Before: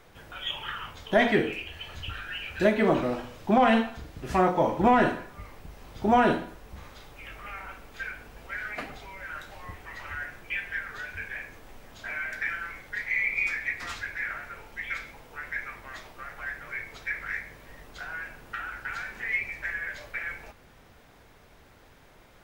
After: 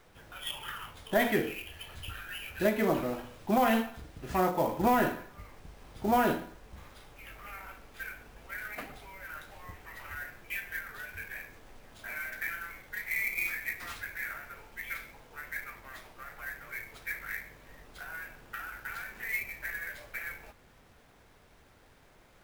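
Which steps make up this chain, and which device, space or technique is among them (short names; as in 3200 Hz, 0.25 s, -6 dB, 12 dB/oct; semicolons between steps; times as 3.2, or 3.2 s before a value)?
early companding sampler (sample-rate reducer 14000 Hz, jitter 0%; companded quantiser 6-bit); gain -5 dB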